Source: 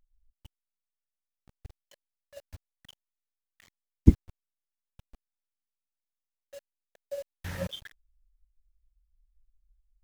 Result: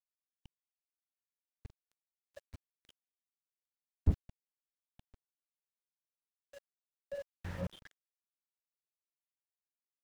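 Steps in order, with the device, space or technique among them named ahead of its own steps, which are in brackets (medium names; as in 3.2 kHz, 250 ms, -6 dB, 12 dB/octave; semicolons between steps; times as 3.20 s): early transistor amplifier (crossover distortion -46.5 dBFS; slew-rate limiter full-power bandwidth 9 Hz); trim -1.5 dB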